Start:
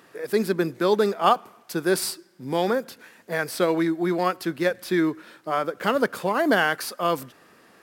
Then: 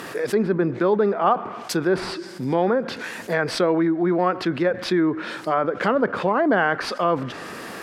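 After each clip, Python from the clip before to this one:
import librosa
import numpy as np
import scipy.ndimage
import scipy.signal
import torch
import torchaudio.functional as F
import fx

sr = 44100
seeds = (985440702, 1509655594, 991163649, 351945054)

y = fx.env_lowpass_down(x, sr, base_hz=1600.0, full_db=-21.0)
y = fx.env_flatten(y, sr, amount_pct=50)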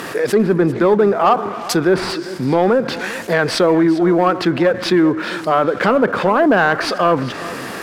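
y = fx.leveller(x, sr, passes=1)
y = y + 10.0 ** (-16.5 / 20.0) * np.pad(y, (int(397 * sr / 1000.0), 0))[:len(y)]
y = F.gain(torch.from_numpy(y), 3.5).numpy()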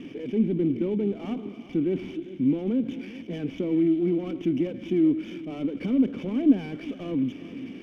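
y = fx.cvsd(x, sr, bps=32000)
y = fx.formant_cascade(y, sr, vowel='i')
y = fx.running_max(y, sr, window=3)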